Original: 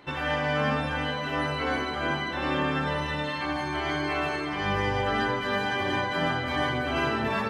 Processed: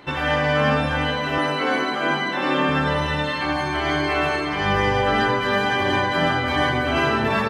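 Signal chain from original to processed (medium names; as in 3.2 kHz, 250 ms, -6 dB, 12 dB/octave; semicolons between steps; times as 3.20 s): 1.38–2.69 s: steep high-pass 160 Hz; delay 106 ms -13 dB; trim +6.5 dB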